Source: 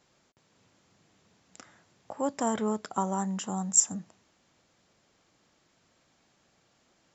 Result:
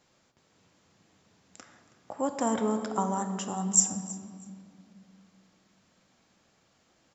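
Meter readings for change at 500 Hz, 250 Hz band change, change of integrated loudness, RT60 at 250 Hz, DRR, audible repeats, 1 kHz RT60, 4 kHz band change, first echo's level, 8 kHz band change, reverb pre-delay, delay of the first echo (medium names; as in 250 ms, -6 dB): +1.0 dB, +1.0 dB, 0.0 dB, 3.4 s, 6.5 dB, 2, 2.0 s, +0.5 dB, -19.5 dB, no reading, 4 ms, 322 ms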